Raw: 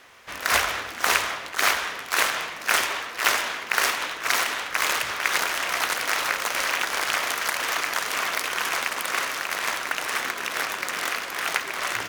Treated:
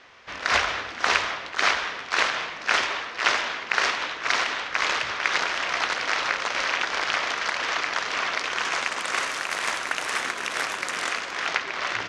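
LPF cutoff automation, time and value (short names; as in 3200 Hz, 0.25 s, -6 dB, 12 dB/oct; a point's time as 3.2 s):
LPF 24 dB/oct
8.32 s 5700 Hz
9.36 s 9500 Hz
10.94 s 9500 Hz
11.57 s 5600 Hz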